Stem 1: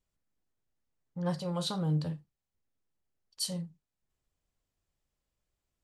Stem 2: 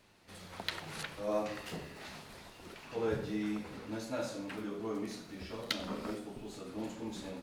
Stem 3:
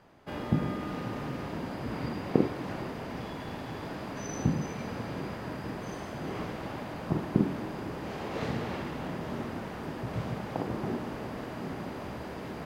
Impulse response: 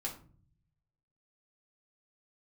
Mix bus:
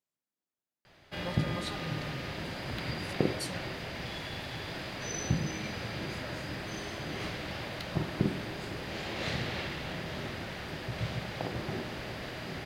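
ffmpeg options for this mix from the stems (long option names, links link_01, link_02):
-filter_complex "[0:a]highpass=210,volume=-5.5dB,asplit=2[link_01][link_02];[1:a]acompressor=threshold=-39dB:ratio=6,adelay=2100,volume=-3dB[link_03];[2:a]equalizer=frequency=250:width_type=o:width=1:gain=-9,equalizer=frequency=1000:width_type=o:width=1:gain=-7,equalizer=frequency=2000:width_type=o:width=1:gain=4,equalizer=frequency=4000:width_type=o:width=1:gain=8,adelay=850,volume=1.5dB[link_04];[link_02]apad=whole_len=419836[link_05];[link_03][link_05]sidechaincompress=threshold=-59dB:ratio=8:attack=16:release=364[link_06];[link_01][link_06][link_04]amix=inputs=3:normalize=0,bandreject=frequency=450:width=12"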